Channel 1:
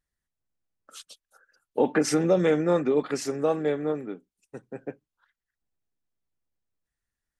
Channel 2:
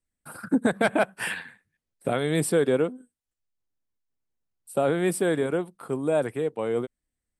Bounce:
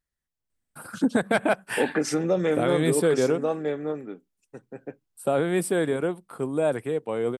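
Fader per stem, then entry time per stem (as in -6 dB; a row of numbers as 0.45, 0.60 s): -2.0, 0.0 dB; 0.00, 0.50 s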